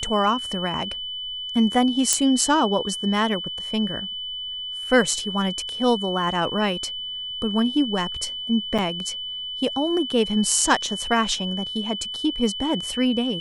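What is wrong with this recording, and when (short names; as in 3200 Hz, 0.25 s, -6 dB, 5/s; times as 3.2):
tone 3000 Hz -29 dBFS
2.13 pop -3 dBFS
8.78–8.79 gap 6.2 ms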